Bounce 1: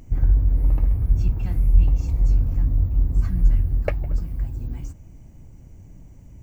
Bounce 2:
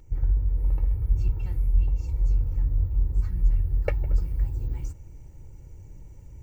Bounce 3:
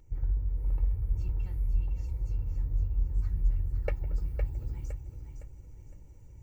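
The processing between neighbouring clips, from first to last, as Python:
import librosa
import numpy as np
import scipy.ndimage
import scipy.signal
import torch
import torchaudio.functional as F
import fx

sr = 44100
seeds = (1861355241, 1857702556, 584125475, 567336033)

y1 = x + 0.64 * np.pad(x, (int(2.2 * sr / 1000.0), 0))[:len(x)]
y1 = fx.rider(y1, sr, range_db=5, speed_s=0.5)
y1 = y1 * librosa.db_to_amplitude(-8.0)
y2 = fx.echo_feedback(y1, sr, ms=511, feedback_pct=36, wet_db=-7.5)
y2 = y2 * librosa.db_to_amplitude(-6.5)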